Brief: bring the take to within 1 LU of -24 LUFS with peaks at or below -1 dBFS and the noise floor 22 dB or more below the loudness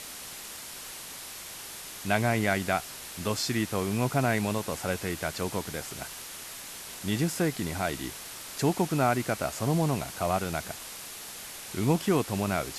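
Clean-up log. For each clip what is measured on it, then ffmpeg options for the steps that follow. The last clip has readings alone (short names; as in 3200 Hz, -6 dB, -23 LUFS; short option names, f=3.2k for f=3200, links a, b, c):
noise floor -42 dBFS; noise floor target -53 dBFS; loudness -30.5 LUFS; peak -9.0 dBFS; loudness target -24.0 LUFS
-> -af "afftdn=nr=11:nf=-42"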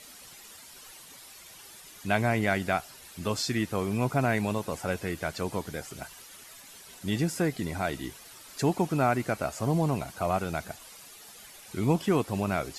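noise floor -50 dBFS; noise floor target -52 dBFS
-> -af "afftdn=nr=6:nf=-50"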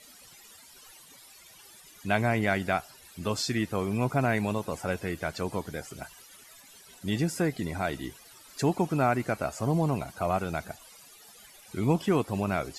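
noise floor -53 dBFS; loudness -29.5 LUFS; peak -9.5 dBFS; loudness target -24.0 LUFS
-> -af "volume=5.5dB"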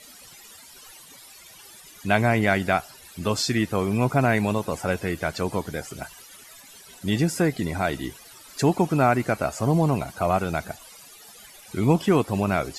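loudness -24.0 LUFS; peak -4.0 dBFS; noise floor -48 dBFS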